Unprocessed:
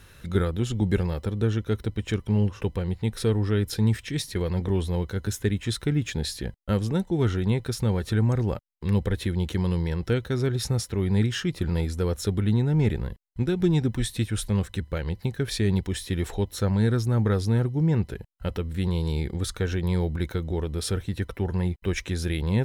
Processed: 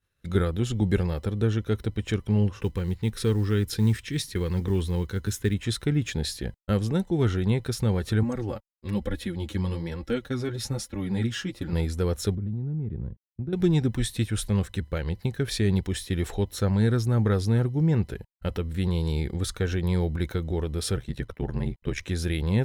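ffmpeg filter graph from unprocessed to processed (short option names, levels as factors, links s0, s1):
-filter_complex "[0:a]asettb=1/sr,asplit=3[s0][s1][s2];[s0]atrim=end=2.614[s3];[s1]atrim=start=2.61:end=5.54,asetpts=PTS-STARTPTS,afade=t=in:d=0.004:c=qsin,afade=t=out:st=2.926:d=0.004:c=qsin,equalizer=f=650:w=3.8:g=-13,acrusher=bits=9:mode=log:mix=0:aa=0.000001[s4];[s2]atrim=start=5.536[s5];[s3][s4]acrossfade=d=0.004:c1=hsin:c2=qsin[s6];[s6][s5]acrossfade=d=0.004:c1=qsin:c2=hsin,asettb=1/sr,asplit=3[s7][s8][s9];[s7]atrim=end=8.234[s10];[s8]atrim=start=8.23:end=11.73,asetpts=PTS-STARTPTS,afade=t=in:d=0.004:c=qsin,afade=t=out:st=3.496:d=0.004:c=qsin,aecho=1:1:3.6:0.4,atrim=end_sample=154350,flanger=delay=3.5:depth=6.7:regen=2:speed=1.1:shape=sinusoidal[s11];[s9]atrim=start=11.726[s12];[s10][s11]acrossfade=d=0.004:c1=hsin:c2=qsin[s13];[s13][s12]acrossfade=d=0.004:c1=qsin:c2=hsin,asettb=1/sr,asplit=3[s14][s15][s16];[s14]atrim=end=12.354[s17];[s15]atrim=start=12.35:end=13.53,asetpts=PTS-STARTPTS,afade=t=in:d=0.004:c=qsin,afade=t=out:st=1.176:d=0.004:c=qsin,bandpass=f=130:t=q:w=0.71,acompressor=threshold=0.0447:ratio=5:attack=3.2:release=140:knee=1:detection=peak[s18];[s16]atrim=start=13.526[s19];[s17][s18]acrossfade=d=0.004:c1=hsin:c2=qsin[s20];[s20][s19]acrossfade=d=0.004:c1=qsin:c2=hsin,asettb=1/sr,asplit=3[s21][s22][s23];[s21]atrim=end=20.964[s24];[s22]atrim=start=20.96:end=22.03,asetpts=PTS-STARTPTS,afade=t=in:d=0.004:c=qsin,afade=t=out:st=1.066:d=0.004:c=qsin,highshelf=f=10000:g=-6.5,aeval=exprs='val(0)*sin(2*PI*36*n/s)':c=same[s25];[s23]atrim=start=22.026[s26];[s24][s25]acrossfade=d=0.004:c1=hsin:c2=qsin[s27];[s27][s26]acrossfade=d=0.004:c1=qsin:c2=hsin,agate=range=0.0224:threshold=0.02:ratio=3:detection=peak,bandreject=f=940:w=22"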